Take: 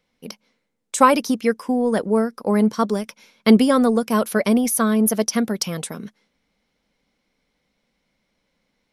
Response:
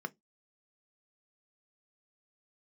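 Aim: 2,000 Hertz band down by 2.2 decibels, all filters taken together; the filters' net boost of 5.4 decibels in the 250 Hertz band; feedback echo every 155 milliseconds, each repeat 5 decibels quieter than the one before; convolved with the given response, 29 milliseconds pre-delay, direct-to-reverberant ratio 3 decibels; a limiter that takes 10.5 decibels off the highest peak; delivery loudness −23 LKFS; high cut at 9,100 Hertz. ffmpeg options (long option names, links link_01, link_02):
-filter_complex "[0:a]lowpass=9100,equalizer=frequency=250:width_type=o:gain=6,equalizer=frequency=2000:width_type=o:gain=-3,alimiter=limit=-9dB:level=0:latency=1,aecho=1:1:155|310|465|620|775|930|1085:0.562|0.315|0.176|0.0988|0.0553|0.031|0.0173,asplit=2[link_01][link_02];[1:a]atrim=start_sample=2205,adelay=29[link_03];[link_02][link_03]afir=irnorm=-1:irlink=0,volume=-4.5dB[link_04];[link_01][link_04]amix=inputs=2:normalize=0,volume=-7.5dB"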